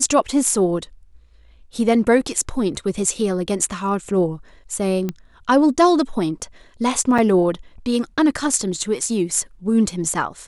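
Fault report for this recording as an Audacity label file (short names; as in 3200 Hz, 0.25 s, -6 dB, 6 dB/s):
5.090000	5.090000	pop -12 dBFS
7.180000	7.190000	gap 5.3 ms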